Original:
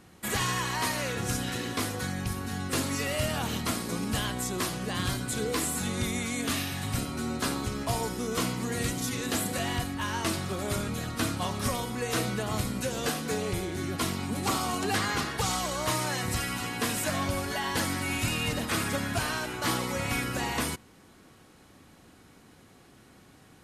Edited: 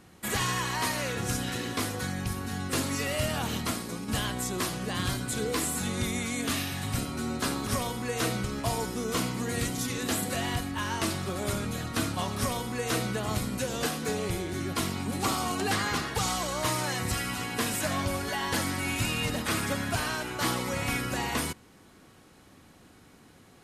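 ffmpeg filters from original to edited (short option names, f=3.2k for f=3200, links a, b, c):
-filter_complex "[0:a]asplit=4[a][b][c][d];[a]atrim=end=4.08,asetpts=PTS-STARTPTS,afade=t=out:st=3.61:d=0.47:silence=0.473151[e];[b]atrim=start=4.08:end=7.672,asetpts=PTS-STARTPTS,afade=t=in:d=0.004:c=hsin:silence=0.473151[f];[c]atrim=start=11.598:end=12.372[g];[d]atrim=start=7.668[h];[e][f]concat=n=2:v=0:a=1[i];[i][g]acrossfade=d=0.004:c1=hsin:c2=hsin[j];[j][h]acrossfade=d=0.004:c1=hsin:c2=hsin"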